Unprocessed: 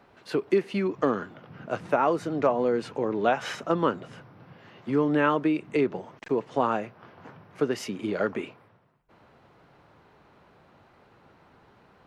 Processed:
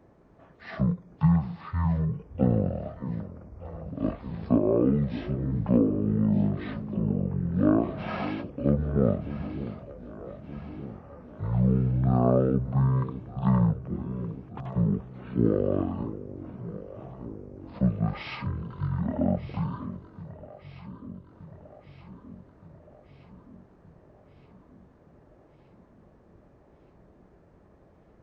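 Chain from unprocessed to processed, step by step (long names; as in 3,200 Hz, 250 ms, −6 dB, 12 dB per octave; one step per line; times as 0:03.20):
delay that swaps between a low-pass and a high-pass 261 ms, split 980 Hz, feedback 77%, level −12 dB
wrong playback speed 78 rpm record played at 33 rpm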